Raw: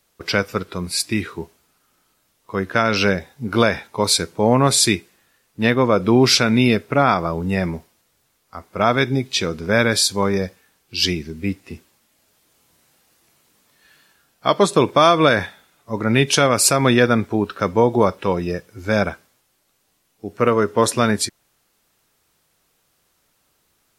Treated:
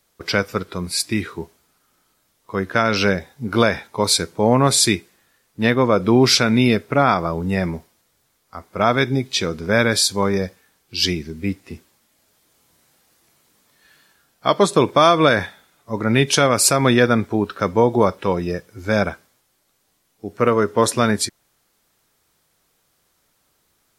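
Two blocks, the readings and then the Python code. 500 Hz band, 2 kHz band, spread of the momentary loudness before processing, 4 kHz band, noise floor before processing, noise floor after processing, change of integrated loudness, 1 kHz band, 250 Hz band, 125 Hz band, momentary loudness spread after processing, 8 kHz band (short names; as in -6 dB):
0.0 dB, -0.5 dB, 13 LU, 0.0 dB, -66 dBFS, -66 dBFS, 0.0 dB, 0.0 dB, 0.0 dB, 0.0 dB, 13 LU, 0.0 dB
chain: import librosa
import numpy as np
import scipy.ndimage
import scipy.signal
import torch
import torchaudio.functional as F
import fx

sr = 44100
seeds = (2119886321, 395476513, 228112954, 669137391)

y = fx.peak_eq(x, sr, hz=2700.0, db=-3.5, octaves=0.2)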